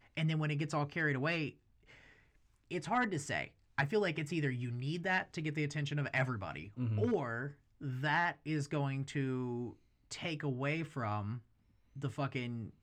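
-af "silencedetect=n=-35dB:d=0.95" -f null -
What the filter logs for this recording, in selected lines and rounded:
silence_start: 1.49
silence_end: 2.72 | silence_duration: 1.23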